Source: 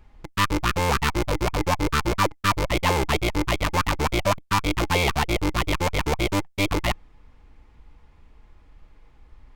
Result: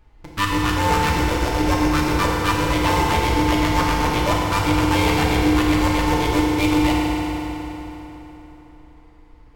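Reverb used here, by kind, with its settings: FDN reverb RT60 3.8 s, high-frequency decay 0.75×, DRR -4.5 dB; gain -2.5 dB

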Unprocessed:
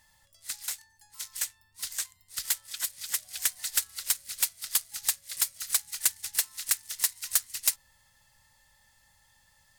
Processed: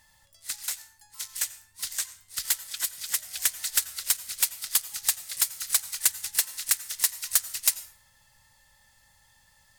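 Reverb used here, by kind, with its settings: plate-style reverb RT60 0.57 s, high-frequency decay 0.75×, pre-delay 75 ms, DRR 16 dB; gain +2.5 dB

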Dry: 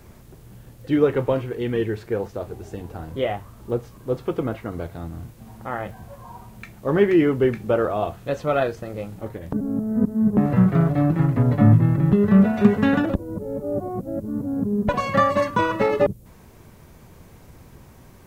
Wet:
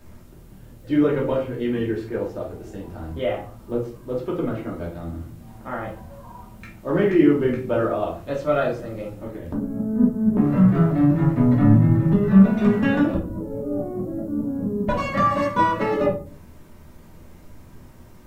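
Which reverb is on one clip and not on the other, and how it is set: shoebox room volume 300 m³, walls furnished, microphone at 2.7 m; gain -6 dB

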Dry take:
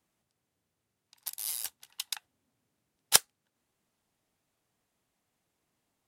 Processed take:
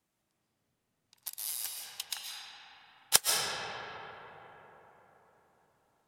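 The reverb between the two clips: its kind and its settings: digital reverb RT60 4.5 s, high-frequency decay 0.4×, pre-delay 95 ms, DRR -3 dB; gain -2.5 dB

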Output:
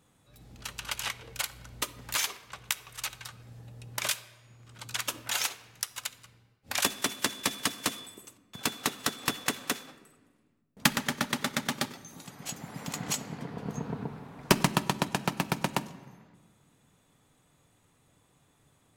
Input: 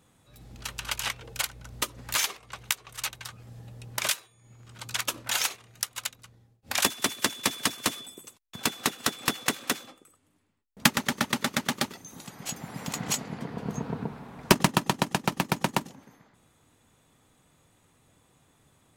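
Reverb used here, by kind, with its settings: shoebox room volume 1500 m³, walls mixed, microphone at 0.34 m; gain -3 dB

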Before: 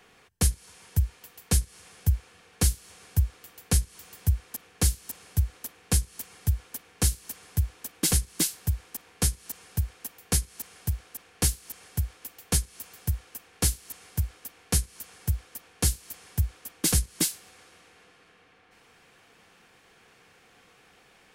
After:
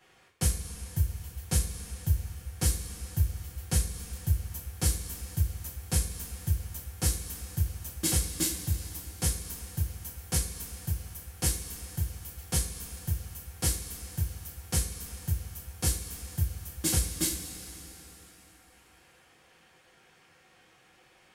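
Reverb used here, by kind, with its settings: two-slope reverb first 0.31 s, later 3.4 s, from -17 dB, DRR -6 dB; gain -9.5 dB

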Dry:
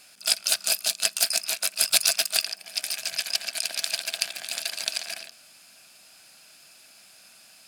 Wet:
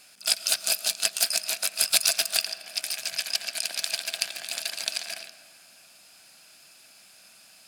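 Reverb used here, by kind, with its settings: digital reverb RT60 2.8 s, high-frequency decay 0.35×, pre-delay 70 ms, DRR 13.5 dB; gain -1 dB

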